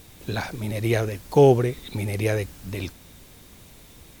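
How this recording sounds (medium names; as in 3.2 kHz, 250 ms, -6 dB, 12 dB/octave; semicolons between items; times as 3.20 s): noise floor -49 dBFS; spectral tilt -6.5 dB/octave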